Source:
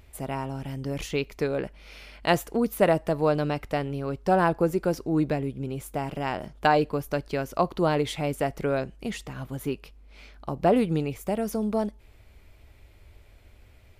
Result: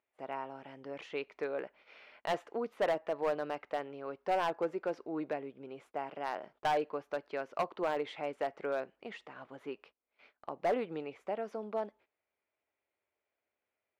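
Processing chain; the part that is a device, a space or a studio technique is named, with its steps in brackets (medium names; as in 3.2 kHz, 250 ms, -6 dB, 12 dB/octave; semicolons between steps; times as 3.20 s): walkie-talkie (band-pass 470–2300 Hz; hard clipper -20 dBFS, distortion -11 dB; gate -54 dBFS, range -18 dB); trim -5.5 dB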